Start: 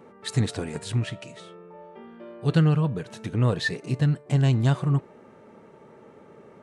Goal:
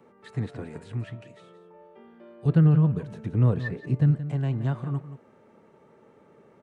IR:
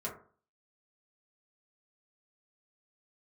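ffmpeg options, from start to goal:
-filter_complex "[0:a]asettb=1/sr,asplit=3[a][b][c];[a]atrim=end=2.454[d];[b]atrim=start=2.45:end=4.17,asetpts=PTS-STARTPTS,afade=t=in:d=0.004:c=qsin,afade=t=out:st=1.716:d=0.004:c=qsin,lowshelf=f=350:g=9.5[e];[c]atrim=start=4.166[f];[d][e]acrossfade=d=0.004:c1=hsin:c2=qsin[g];[g][f]acrossfade=d=0.004:c1=qsin:c2=hsin,acrossover=split=280|510|2400[h][i][j][k];[k]acompressor=threshold=-57dB:ratio=4[l];[h][i][j][l]amix=inputs=4:normalize=0,aecho=1:1:175:0.224,volume=-6.5dB"

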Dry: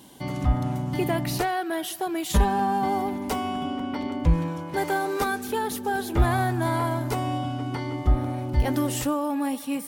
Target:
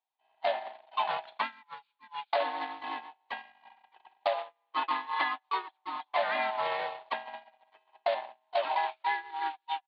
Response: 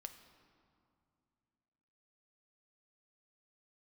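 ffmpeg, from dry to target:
-filter_complex "[0:a]afftfilt=real='real(if(lt(b,1008),b+24*(1-2*mod(floor(b/24),2)),b),0)':imag='imag(if(lt(b,1008),b+24*(1-2*mod(floor(b/24),2)),b),0)':win_size=2048:overlap=0.75,aresample=11025,acrusher=bits=3:mode=log:mix=0:aa=0.000001,aresample=44100,aresample=8000,aresample=44100,highpass=820,asplit=2[a][b];[b]aecho=0:1:159:0.112[c];[a][c]amix=inputs=2:normalize=0,agate=range=-44dB:threshold=-28dB:ratio=16:detection=peak,asplit=2[d][e];[e]asetrate=52444,aresample=44100,atempo=0.840896,volume=-2dB[f];[d][f]amix=inputs=2:normalize=0,acompressor=threshold=-29dB:ratio=6,volume=3dB"

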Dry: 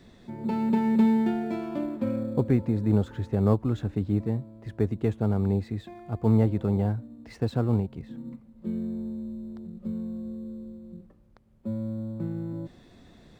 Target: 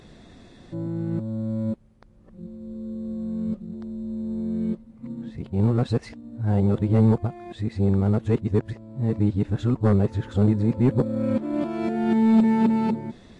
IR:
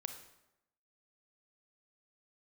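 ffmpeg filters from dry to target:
-af "areverse,aeval=exprs='0.376*sin(PI/2*1.58*val(0)/0.376)':c=same,volume=-2.5dB" -ar 24000 -c:a libmp3lame -b:a 48k

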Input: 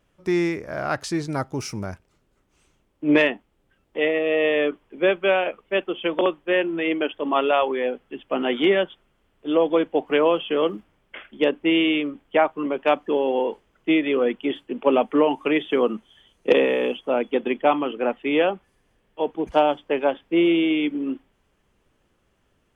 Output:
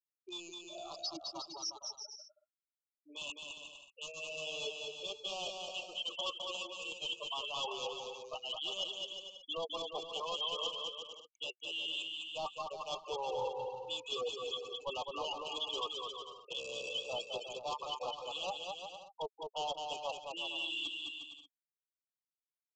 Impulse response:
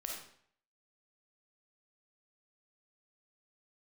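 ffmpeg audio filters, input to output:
-filter_complex "[0:a]highpass=1.1k,afftfilt=real='re*gte(hypot(re,im),0.0631)':imag='im*gte(hypot(re,im),0.0631)':win_size=1024:overlap=0.75,equalizer=f=3.4k:t=o:w=0.9:g=14.5,areverse,acompressor=threshold=-31dB:ratio=16,areverse,flanger=delay=4.2:depth=4.6:regen=33:speed=0.21:shape=triangular,asoftclip=type=hard:threshold=-36.5dB,asuperstop=centerf=1800:order=12:qfactor=1.1,asplit=2[a][b];[b]aecho=0:1:210|357|459.9|531.9|582.4:0.631|0.398|0.251|0.158|0.1[c];[a][c]amix=inputs=2:normalize=0,aresample=16000,aresample=44100,volume=3dB"

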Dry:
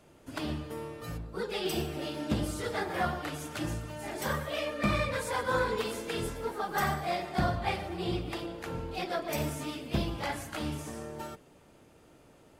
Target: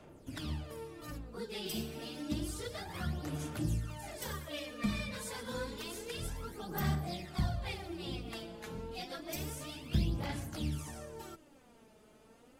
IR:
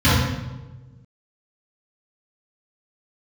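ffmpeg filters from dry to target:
-filter_complex "[0:a]aphaser=in_gain=1:out_gain=1:delay=4.7:decay=0.63:speed=0.29:type=sinusoidal,acrossover=split=270|3000[a][b][c];[b]acompressor=threshold=-44dB:ratio=2.5[d];[a][d][c]amix=inputs=3:normalize=0,volume=-4.5dB"

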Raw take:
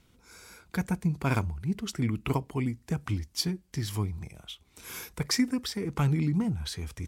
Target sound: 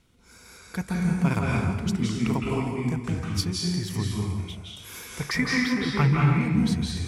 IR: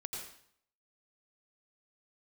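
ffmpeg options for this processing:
-filter_complex "[0:a]asettb=1/sr,asplit=3[a][b][c];[a]atrim=end=5.224[d];[b]atrim=start=5.22:end=6.29,asetpts=PTS-STARTPTS,afade=t=in:d=0.004:c=qsin,afade=t=out:st=1.066:d=0.004:c=qsin,equalizer=f=125:t=o:w=1:g=6,equalizer=f=250:t=o:w=1:g=-3,equalizer=f=1k:t=o:w=1:g=5,equalizer=f=2k:t=o:w=1:g=10,equalizer=f=8k:t=o:w=1:g=-12[e];[c]atrim=start=6.286[f];[d][e]acrossfade=d=0.004:c1=hsin:c2=qsin[g];[g][f]acrossfade=d=0.004:c1=qsin:c2=hsin[h];[1:a]atrim=start_sample=2205,asetrate=22932,aresample=44100[i];[h][i]afir=irnorm=-1:irlink=0"

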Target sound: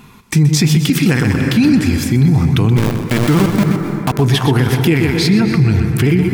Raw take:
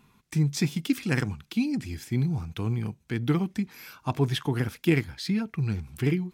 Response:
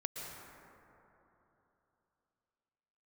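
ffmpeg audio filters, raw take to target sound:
-filter_complex "[0:a]asplit=3[a][b][c];[a]afade=t=out:st=2.76:d=0.02[d];[b]aeval=exprs='val(0)*gte(abs(val(0)),0.0398)':c=same,afade=t=in:st=2.76:d=0.02,afade=t=out:st=4.18:d=0.02[e];[c]afade=t=in:st=4.18:d=0.02[f];[d][e][f]amix=inputs=3:normalize=0,asplit=2[g][h];[1:a]atrim=start_sample=2205,adelay=125[i];[h][i]afir=irnorm=-1:irlink=0,volume=-8dB[j];[g][j]amix=inputs=2:normalize=0,alimiter=level_in=22dB:limit=-1dB:release=50:level=0:latency=1,volume=-3dB"

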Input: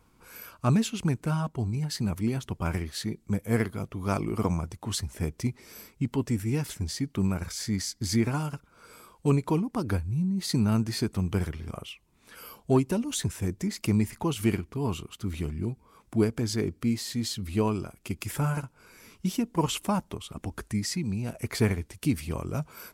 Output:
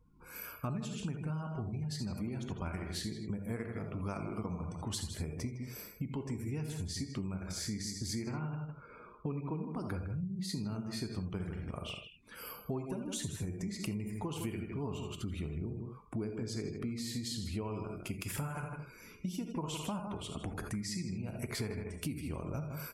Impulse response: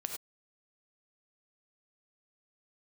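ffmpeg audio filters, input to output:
-filter_complex "[0:a]asettb=1/sr,asplit=3[a][b][c];[a]atrim=end=8.184[d];[b]atrim=start=8.18:end=9.6,asetpts=PTS-STARTPTS,afade=t=in:d=0.004:c=qsin,afade=t=out:st=1.416:d=0.004:c=qsin,lowpass=2.8k[e];[c]atrim=start=9.596[f];[d][e]acrossfade=d=0.004:c1=hsin:c2=qsin[g];[g][f]acrossfade=d=0.004:c1=qsin:c2=hsin,asplit=2[h][i];[i]adelay=157.4,volume=-9dB,highshelf=f=4k:g=-3.54[j];[h][j]amix=inputs=2:normalize=0[k];[1:a]atrim=start_sample=2205,atrim=end_sample=3969[l];[k][l]afir=irnorm=-1:irlink=0,acompressor=threshold=-35dB:ratio=8,afftdn=nr=21:nf=-58"

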